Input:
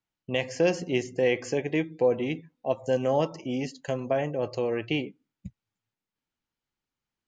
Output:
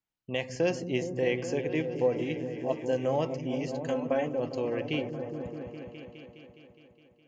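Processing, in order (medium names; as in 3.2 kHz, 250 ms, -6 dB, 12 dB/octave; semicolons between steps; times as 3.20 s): 3.88–4.40 s: comb 3.9 ms, depth 82%; on a send: delay with an opening low-pass 207 ms, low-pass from 200 Hz, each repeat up 1 oct, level -3 dB; on the sum: trim -4 dB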